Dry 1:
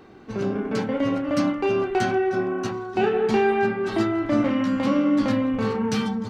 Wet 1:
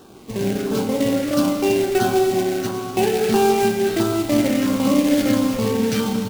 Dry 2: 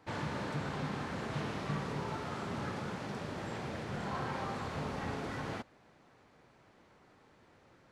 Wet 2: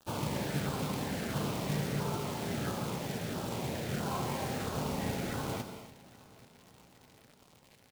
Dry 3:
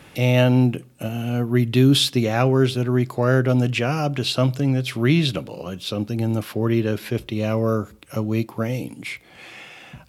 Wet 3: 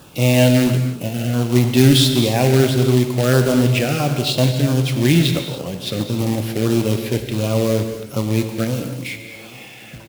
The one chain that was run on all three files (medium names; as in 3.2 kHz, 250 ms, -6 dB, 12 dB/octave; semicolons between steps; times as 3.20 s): companded quantiser 4-bit; LFO notch saw down 1.5 Hz 900–2200 Hz; feedback delay 825 ms, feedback 58%, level -23 dB; gated-style reverb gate 320 ms flat, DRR 6 dB; trim +2.5 dB